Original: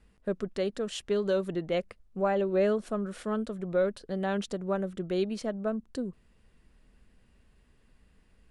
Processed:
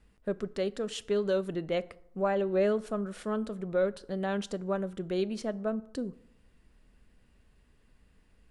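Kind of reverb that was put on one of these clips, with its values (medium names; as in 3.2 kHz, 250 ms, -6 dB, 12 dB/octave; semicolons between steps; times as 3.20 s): FDN reverb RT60 0.75 s, low-frequency decay 1.05×, high-frequency decay 0.6×, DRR 16 dB; trim -1 dB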